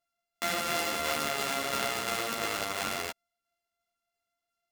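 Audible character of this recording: a buzz of ramps at a fixed pitch in blocks of 64 samples; tremolo saw down 2.9 Hz, depth 35%; a shimmering, thickened sound

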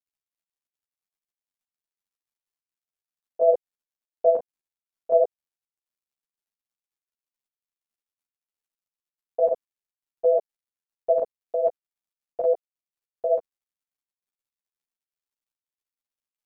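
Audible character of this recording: a quantiser's noise floor 12-bit, dither none; chopped level 4.1 Hz, depth 60%, duty 85%; a shimmering, thickened sound

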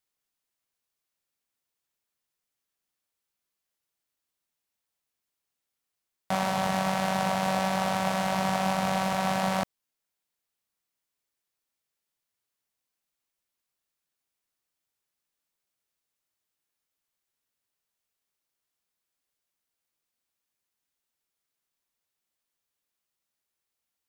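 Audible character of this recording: noise floor -86 dBFS; spectral tilt -4.5 dB/oct

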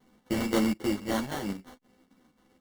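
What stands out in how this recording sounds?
a buzz of ramps at a fixed pitch in blocks of 16 samples; chopped level 3.8 Hz, depth 60%, duty 75%; aliases and images of a low sample rate 2500 Hz, jitter 0%; a shimmering, thickened sound

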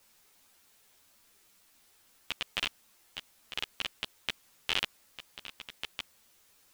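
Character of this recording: random-step tremolo 1.4 Hz, depth 85%; a quantiser's noise floor 12-bit, dither triangular; a shimmering, thickened sound

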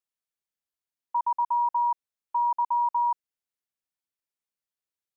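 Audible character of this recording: noise floor -93 dBFS; spectral tilt +6.0 dB/oct

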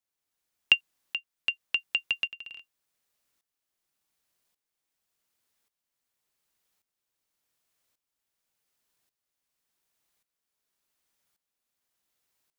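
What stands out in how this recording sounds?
tremolo saw up 0.88 Hz, depth 80%

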